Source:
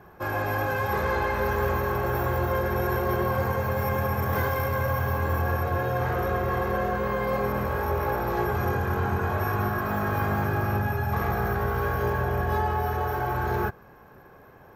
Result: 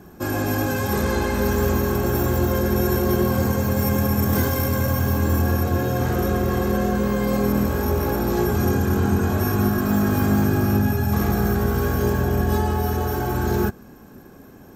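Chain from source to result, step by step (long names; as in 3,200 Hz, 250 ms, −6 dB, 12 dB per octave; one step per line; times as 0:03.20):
octave-band graphic EQ 125/250/500/1,000/2,000/8,000 Hz −4/+10/−6/−8/−7/+12 dB
level +7.5 dB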